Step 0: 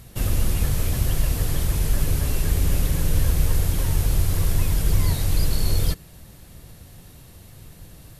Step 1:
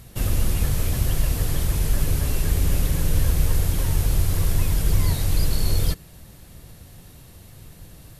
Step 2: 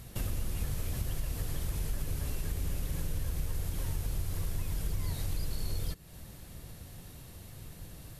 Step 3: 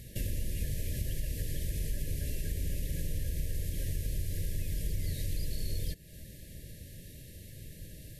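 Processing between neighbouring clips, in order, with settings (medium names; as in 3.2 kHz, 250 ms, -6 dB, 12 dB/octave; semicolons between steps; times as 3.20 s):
no audible change
compression 3:1, threshold -30 dBFS, peak gain reduction 13 dB; trim -3 dB
FFT band-reject 650–1600 Hz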